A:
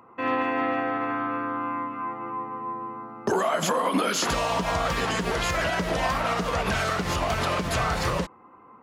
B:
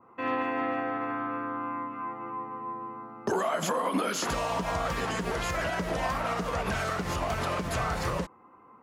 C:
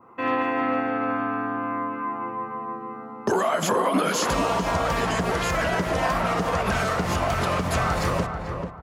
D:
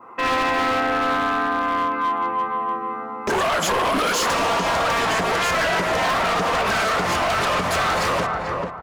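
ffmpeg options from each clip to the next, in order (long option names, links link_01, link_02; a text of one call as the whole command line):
ffmpeg -i in.wav -af "adynamicequalizer=threshold=0.00794:dfrequency=3700:dqfactor=0.9:tfrequency=3700:tqfactor=0.9:attack=5:release=100:ratio=0.375:range=2:mode=cutabove:tftype=bell,volume=-4dB" out.wav
ffmpeg -i in.wav -filter_complex "[0:a]asplit=2[link_01][link_02];[link_02]adelay=439,lowpass=frequency=1300:poles=1,volume=-5dB,asplit=2[link_03][link_04];[link_04]adelay=439,lowpass=frequency=1300:poles=1,volume=0.31,asplit=2[link_05][link_06];[link_06]adelay=439,lowpass=frequency=1300:poles=1,volume=0.31,asplit=2[link_07][link_08];[link_08]adelay=439,lowpass=frequency=1300:poles=1,volume=0.31[link_09];[link_01][link_03][link_05][link_07][link_09]amix=inputs=5:normalize=0,volume=5.5dB" out.wav
ffmpeg -i in.wav -filter_complex "[0:a]asplit=2[link_01][link_02];[link_02]highpass=frequency=720:poles=1,volume=16dB,asoftclip=type=tanh:threshold=-10.5dB[link_03];[link_01][link_03]amix=inputs=2:normalize=0,lowpass=frequency=5000:poles=1,volume=-6dB,aeval=exprs='0.15*(abs(mod(val(0)/0.15+3,4)-2)-1)':channel_layout=same" out.wav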